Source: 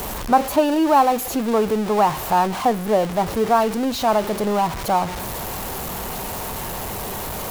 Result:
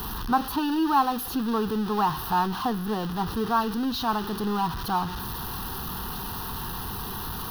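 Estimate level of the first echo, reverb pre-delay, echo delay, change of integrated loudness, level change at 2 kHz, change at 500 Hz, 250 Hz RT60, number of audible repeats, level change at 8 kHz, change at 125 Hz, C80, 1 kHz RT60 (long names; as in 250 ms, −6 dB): no echo audible, no reverb audible, no echo audible, −6.5 dB, −5.5 dB, −13.0 dB, no reverb audible, no echo audible, −10.0 dB, −3.0 dB, no reverb audible, no reverb audible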